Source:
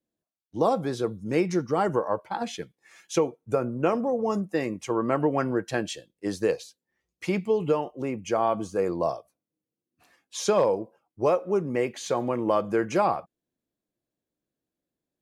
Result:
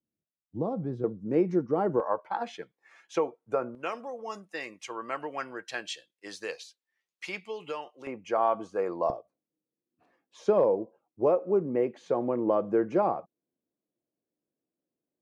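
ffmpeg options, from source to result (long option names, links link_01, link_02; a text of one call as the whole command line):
ffmpeg -i in.wav -af "asetnsamples=nb_out_samples=441:pad=0,asendcmd='1.04 bandpass f 340;2 bandpass f 1000;3.75 bandpass f 3000;8.07 bandpass f 990;9.1 bandpass f 380',bandpass=frequency=130:width_type=q:width=0.7:csg=0" out.wav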